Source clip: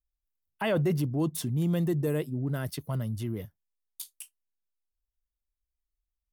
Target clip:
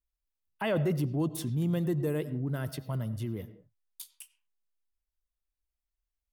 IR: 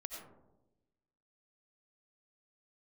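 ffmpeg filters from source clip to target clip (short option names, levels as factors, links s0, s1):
-filter_complex "[0:a]asplit=2[s0][s1];[1:a]atrim=start_sample=2205,afade=t=out:st=0.29:d=0.01,atrim=end_sample=13230,lowpass=4900[s2];[s1][s2]afir=irnorm=-1:irlink=0,volume=0.473[s3];[s0][s3]amix=inputs=2:normalize=0,volume=0.631"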